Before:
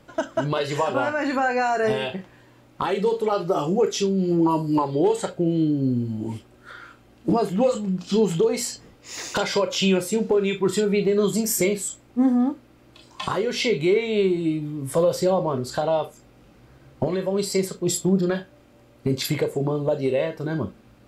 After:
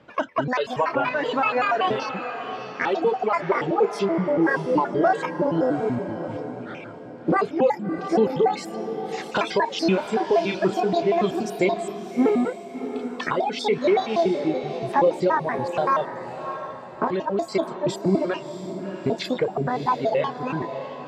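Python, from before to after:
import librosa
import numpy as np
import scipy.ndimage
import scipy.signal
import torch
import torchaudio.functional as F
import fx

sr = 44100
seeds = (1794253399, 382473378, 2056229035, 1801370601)

y = fx.pitch_trill(x, sr, semitones=9.0, every_ms=95)
y = scipy.signal.sosfilt(scipy.signal.butter(2, 80.0, 'highpass', fs=sr, output='sos'), y)
y = fx.dereverb_blind(y, sr, rt60_s=1.7)
y = scipy.signal.sosfilt(scipy.signal.butter(2, 3300.0, 'lowpass', fs=sr, output='sos'), y)
y = fx.low_shelf(y, sr, hz=250.0, db=-4.5)
y = fx.echo_diffused(y, sr, ms=657, feedback_pct=42, wet_db=-9.5)
y = F.gain(torch.from_numpy(y), 2.0).numpy()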